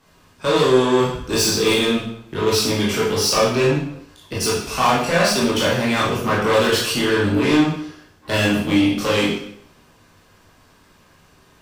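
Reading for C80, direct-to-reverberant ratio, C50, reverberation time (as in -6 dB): 6.0 dB, -7.0 dB, 2.0 dB, 0.70 s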